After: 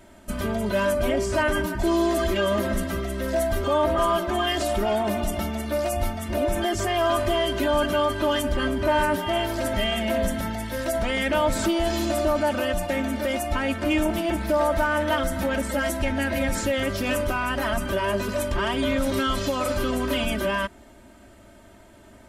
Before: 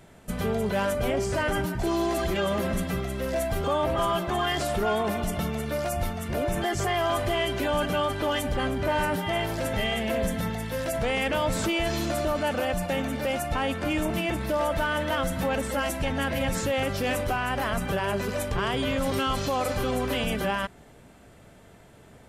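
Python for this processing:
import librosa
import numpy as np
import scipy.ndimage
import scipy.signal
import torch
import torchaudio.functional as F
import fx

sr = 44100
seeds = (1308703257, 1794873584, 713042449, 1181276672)

y = fx.peak_eq(x, sr, hz=200.0, db=5.0, octaves=0.22)
y = y + 0.83 * np.pad(y, (int(3.2 * sr / 1000.0), 0))[:len(y)]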